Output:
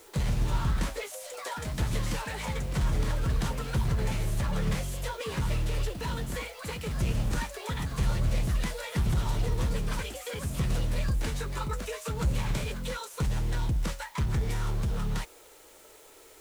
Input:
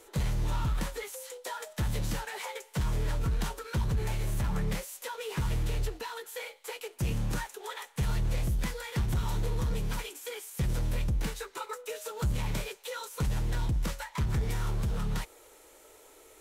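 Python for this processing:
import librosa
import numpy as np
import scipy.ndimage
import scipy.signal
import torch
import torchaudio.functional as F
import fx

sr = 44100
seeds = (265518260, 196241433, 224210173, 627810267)

p1 = fx.echo_pitch(x, sr, ms=153, semitones=3, count=2, db_per_echo=-6.0)
p2 = scipy.signal.sosfilt(scipy.signal.butter(2, 11000.0, 'lowpass', fs=sr, output='sos'), p1)
p3 = fx.quant_dither(p2, sr, seeds[0], bits=8, dither='triangular')
p4 = p2 + (p3 * 10.0 ** (-9.0 / 20.0))
y = p4 * 10.0 ** (-1.5 / 20.0)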